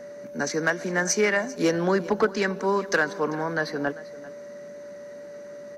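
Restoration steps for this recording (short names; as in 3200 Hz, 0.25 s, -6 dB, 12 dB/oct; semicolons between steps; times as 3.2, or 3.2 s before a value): clip repair -13 dBFS; notch 580 Hz, Q 30; inverse comb 0.394 s -18.5 dB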